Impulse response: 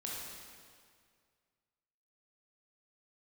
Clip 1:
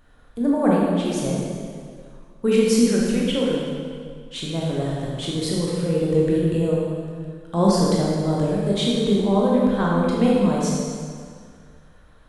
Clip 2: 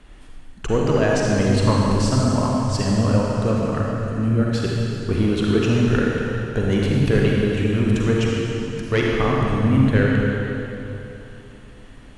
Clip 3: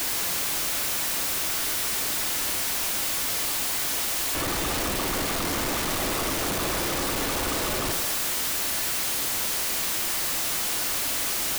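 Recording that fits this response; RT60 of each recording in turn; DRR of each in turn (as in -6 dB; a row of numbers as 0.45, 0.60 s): 1; 2.1, 3.0, 1.4 s; -4.5, -3.0, 5.0 dB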